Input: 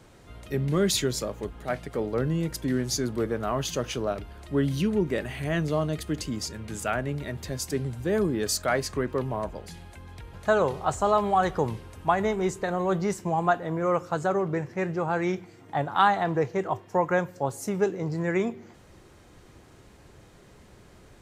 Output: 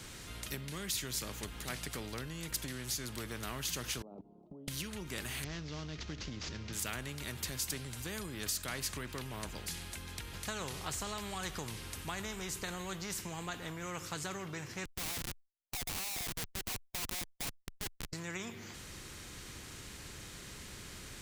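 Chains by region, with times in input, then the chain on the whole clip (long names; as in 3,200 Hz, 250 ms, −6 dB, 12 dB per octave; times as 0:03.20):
0:04.02–0:04.68: elliptic band-pass filter 180–790 Hz + output level in coarse steps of 21 dB
0:05.44–0:06.73: variable-slope delta modulation 32 kbit/s + tilt shelving filter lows +6.5 dB, about 710 Hz
0:14.85–0:18.13: formant resonators in series a + comparator with hysteresis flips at −44 dBFS
whole clip: guitar amp tone stack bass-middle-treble 6-0-2; downward compressor, threshold −48 dBFS; every bin compressed towards the loudest bin 2 to 1; level +17 dB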